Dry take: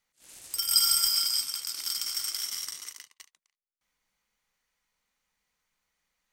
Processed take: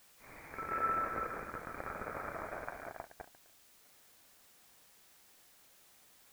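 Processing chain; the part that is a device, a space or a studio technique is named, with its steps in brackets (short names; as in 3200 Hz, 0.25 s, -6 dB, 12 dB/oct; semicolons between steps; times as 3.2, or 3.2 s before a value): scrambled radio voice (BPF 300–2900 Hz; inverted band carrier 2700 Hz; white noise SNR 20 dB); gain +9 dB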